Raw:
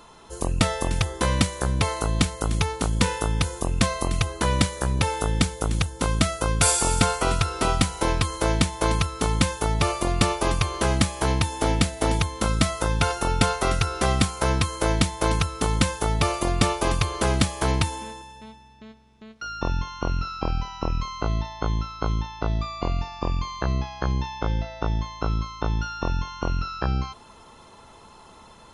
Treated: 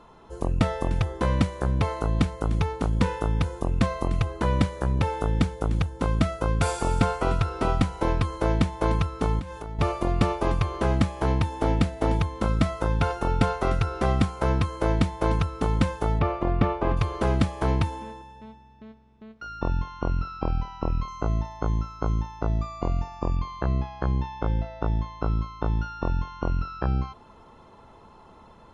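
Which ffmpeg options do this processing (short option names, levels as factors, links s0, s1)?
-filter_complex "[0:a]asettb=1/sr,asplit=3[s0][s1][s2];[s0]atrim=end=9.394[s3];[s1]atrim=start=9.39:end=9.79,asetpts=PTS-STARTPTS,afade=t=in:d=0.004:c=qsin,afade=t=out:st=0.396:d=0.004:c=qsin,acompressor=threshold=0.0316:ratio=8:attack=3.2:release=140:knee=1:detection=peak[s4];[s2]atrim=start=9.786[s5];[s3][s4]acrossfade=d=0.004:c1=hsin:c2=qsin[s6];[s6][s5]acrossfade=d=0.004:c1=qsin:c2=hsin,asettb=1/sr,asplit=3[s7][s8][s9];[s7]atrim=end=16.194[s10];[s8]atrim=start=16.19:end=16.97,asetpts=PTS-STARTPTS,afade=t=in:d=0.004:c=qsin,afade=t=out:st=0.776:d=0.004:c=qsin,lowpass=2500[s11];[s9]atrim=start=16.966[s12];[s10][s11]acrossfade=d=0.004:c1=hsin:c2=qsin[s13];[s13][s12]acrossfade=d=0.004:c1=qsin:c2=hsin,asettb=1/sr,asplit=3[s14][s15][s16];[s14]atrim=end=21.084[s17];[s15]atrim=start=21.08:end=23.36,asetpts=PTS-STARTPTS,afade=t=in:d=0.004:c=qsin,afade=t=out:st=2.276:d=0.004:c=qsin,highshelf=f=5700:t=q:w=1.5:g=12[s18];[s16]atrim=start=23.356[s19];[s17][s18]acrossfade=d=0.004:c1=hsin:c2=qsin[s20];[s20][s19]acrossfade=d=0.004:c1=qsin:c2=hsin,lowpass=f=1100:p=1"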